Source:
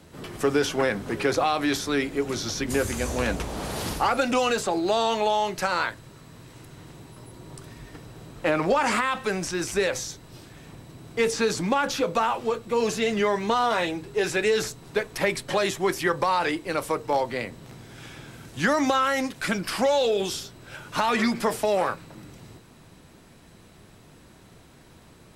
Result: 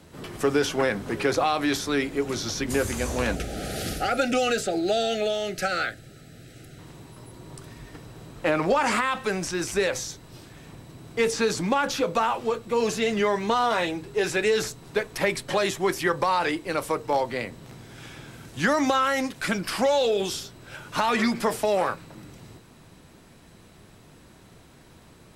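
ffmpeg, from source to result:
ffmpeg -i in.wav -filter_complex "[0:a]asettb=1/sr,asplit=3[link_01][link_02][link_03];[link_01]atrim=end=3.354[link_04];[link_02]atrim=start=3.35:end=6.79,asetpts=PTS-STARTPTS,afade=type=in:duration=0.004:curve=qsin,afade=type=out:start_time=3.436:duration=0.004:curve=qsin,asuperstop=centerf=1000:order=20:qfactor=2.4[link_05];[link_03]atrim=start=6.786[link_06];[link_04][link_05]acrossfade=duration=0.004:curve1=hsin:curve2=qsin[link_07];[link_07][link_06]acrossfade=duration=0.004:curve1=qsin:curve2=hsin" out.wav

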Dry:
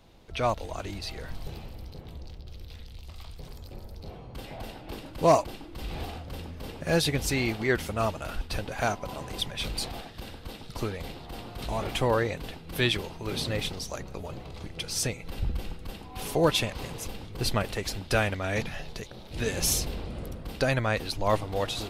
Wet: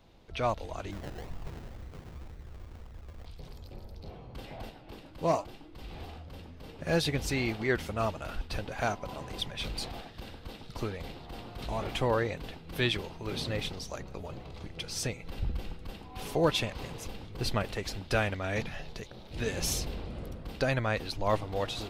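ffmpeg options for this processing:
ffmpeg -i in.wav -filter_complex "[0:a]asplit=3[link_01][link_02][link_03];[link_01]afade=type=out:start_time=0.91:duration=0.02[link_04];[link_02]acrusher=samples=31:mix=1:aa=0.000001:lfo=1:lforange=18.6:lforate=2,afade=type=in:start_time=0.91:duration=0.02,afade=type=out:start_time=3.25:duration=0.02[link_05];[link_03]afade=type=in:start_time=3.25:duration=0.02[link_06];[link_04][link_05][link_06]amix=inputs=3:normalize=0,asettb=1/sr,asplit=3[link_07][link_08][link_09];[link_07]atrim=end=4.694[link_10];[link_08]atrim=start=4.69:end=6.79,asetpts=PTS-STARTPTS,afade=type=in:duration=0.004:curve=qsin,afade=type=out:start_time=2.096:duration=0.004:curve=qsin,flanger=delay=6.4:depth=6.4:regen=76:speed=1:shape=sinusoidal[link_11];[link_09]atrim=start=6.786[link_12];[link_10][link_11]acrossfade=duration=0.004:curve1=hsin:curve2=qsin[link_13];[link_13][link_12]acrossfade=duration=0.004:curve1=qsin:curve2=hsin,equalizer=frequency=11000:width_type=o:width=1.2:gain=-6.5,volume=-3dB" out.wav

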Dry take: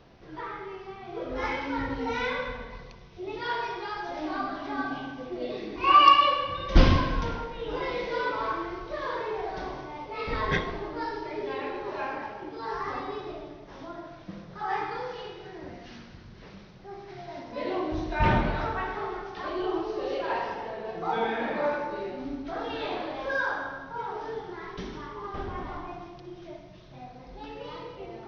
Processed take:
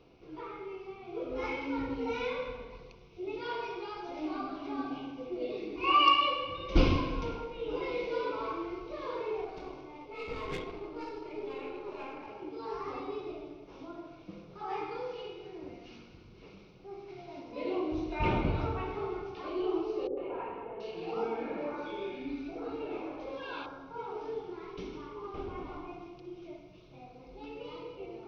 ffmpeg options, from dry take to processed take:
ffmpeg -i in.wav -filter_complex "[0:a]asettb=1/sr,asplit=3[link_01][link_02][link_03];[link_01]atrim=end=9.444[link_04];[link_02]atrim=start=9.44:end=12.28,asetpts=PTS-STARTPTS,afade=type=in:duration=0.004:curve=qsin,afade=type=out:start_time=2.836:duration=0.004:curve=qsin,aeval=exprs='(tanh(20*val(0)+0.65)-tanh(0.65))/20':channel_layout=same[link_05];[link_03]atrim=start=12.276[link_06];[link_04][link_05]acrossfade=duration=0.004:curve1=hsin:curve2=qsin[link_07];[link_07][link_06]acrossfade=duration=0.004:curve1=qsin:curve2=hsin,asettb=1/sr,asplit=3[link_08][link_09][link_10];[link_08]atrim=end=18.444[link_11];[link_09]atrim=start=18.44:end=19.35,asetpts=PTS-STARTPTS,afade=type=in:duration=0.004:curve=qsin,afade=type=out:start_time=0.906:duration=0.004:curve=qsin,equalizer=frequency=89:width_type=o:width=2:gain=11.5[link_12];[link_10]atrim=start=19.346[link_13];[link_11][link_12]acrossfade=duration=0.004:curve1=hsin:curve2=qsin[link_14];[link_14][link_13]acrossfade=duration=0.004:curve1=qsin:curve2=hsin,asettb=1/sr,asplit=3[link_15][link_16][link_17];[link_15]atrim=end=20.074[link_18];[link_16]atrim=start=20.07:end=23.66,asetpts=PTS-STARTPTS,afade=type=in:duration=0.004:curve=qsin,afade=type=out:start_time=3.586:duration=0.004:curve=qsin,acrossover=split=730|2300[link_19][link_20][link_21];[link_20]adelay=100[link_22];[link_21]adelay=730[link_23];[link_19][link_22][link_23]amix=inputs=3:normalize=0,atrim=end_sample=158319[link_24];[link_17]atrim=start=23.656[link_25];[link_18][link_24]acrossfade=duration=0.004:curve1=hsin:curve2=qsin[link_26];[link_26][link_25]acrossfade=duration=0.004:curve1=qsin:curve2=hsin,superequalizer=6b=2:7b=2:11b=0.355:12b=1.78,volume=-7.5dB" out.wav

